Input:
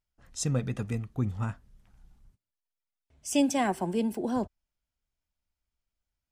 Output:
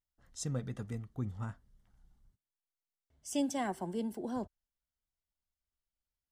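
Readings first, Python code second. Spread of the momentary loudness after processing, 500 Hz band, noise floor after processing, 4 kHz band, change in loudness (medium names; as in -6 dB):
13 LU, -8.0 dB, under -85 dBFS, -8.5 dB, -8.0 dB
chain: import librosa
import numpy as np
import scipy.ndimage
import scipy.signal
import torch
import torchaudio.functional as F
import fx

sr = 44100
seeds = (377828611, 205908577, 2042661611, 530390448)

y = fx.notch(x, sr, hz=2500.0, q=6.1)
y = y * librosa.db_to_amplitude(-8.0)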